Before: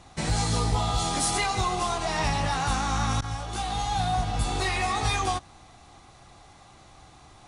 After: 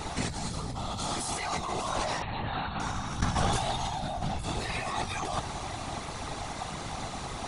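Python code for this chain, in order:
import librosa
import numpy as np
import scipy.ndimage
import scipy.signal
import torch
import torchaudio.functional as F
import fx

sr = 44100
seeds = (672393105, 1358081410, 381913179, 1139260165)

y = fx.over_compress(x, sr, threshold_db=-37.0, ratio=-1.0)
y = fx.whisperise(y, sr, seeds[0])
y = fx.brickwall_lowpass(y, sr, high_hz=4400.0, at=(2.22, 2.8))
y = F.gain(torch.from_numpy(y), 5.0).numpy()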